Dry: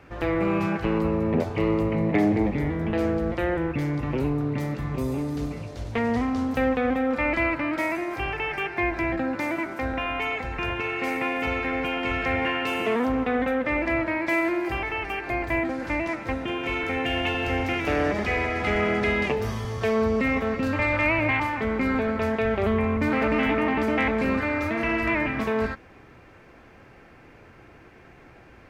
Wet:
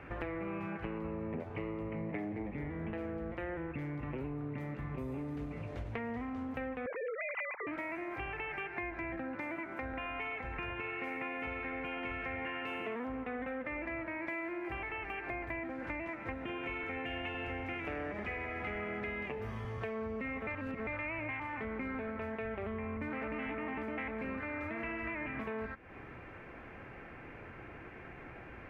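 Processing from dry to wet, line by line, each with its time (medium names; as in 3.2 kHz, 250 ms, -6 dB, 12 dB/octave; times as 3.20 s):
6.86–7.67 s: formants replaced by sine waves
20.47–20.87 s: reverse
whole clip: resonant high shelf 3.3 kHz -11 dB, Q 1.5; compression, threshold -38 dBFS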